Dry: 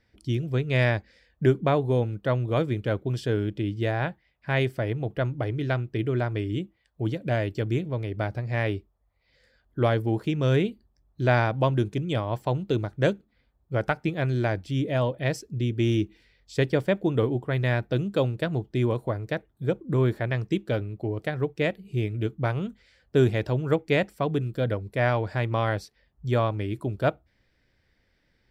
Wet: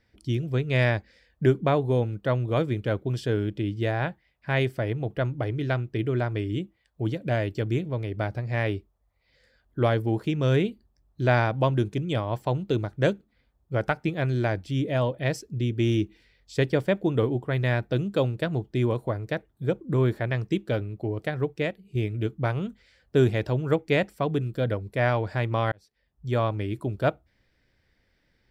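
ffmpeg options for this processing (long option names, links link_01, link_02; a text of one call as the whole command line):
ffmpeg -i in.wav -filter_complex "[0:a]asplit=3[link_01][link_02][link_03];[link_01]atrim=end=21.95,asetpts=PTS-STARTPTS,afade=type=out:start_time=21.55:duration=0.4:curve=qua:silence=0.421697[link_04];[link_02]atrim=start=21.95:end=25.72,asetpts=PTS-STARTPTS,afade=type=in:duration=0.004:curve=hsin:silence=0.421697,afade=type=out:start_time=3.766:duration=0.004:curve=hsin[link_05];[link_03]atrim=start=25.72,asetpts=PTS-STARTPTS,afade=type=in:duration=0.76[link_06];[link_04][link_05][link_06]concat=n=3:v=0:a=1" out.wav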